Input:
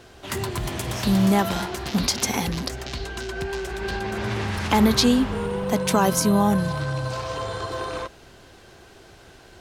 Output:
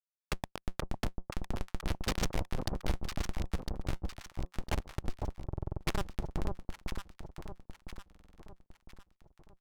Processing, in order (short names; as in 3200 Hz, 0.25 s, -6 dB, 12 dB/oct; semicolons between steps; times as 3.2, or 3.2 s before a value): treble ducked by the level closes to 1400 Hz, closed at -14 dBFS; passive tone stack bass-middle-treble 10-0-10; in parallel at -1 dB: compressor 12:1, threshold -49 dBFS, peak gain reduction 24 dB; on the sum: Schmitt trigger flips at -24 dBFS; short-mantissa float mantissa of 2-bit; on a send: echo with dull and thin repeats by turns 0.503 s, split 1000 Hz, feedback 64%, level -3 dB; on the sum: stuck buffer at 5.48/8.07, samples 2048, times 6; decimation joined by straight lines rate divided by 2×; gain +7.5 dB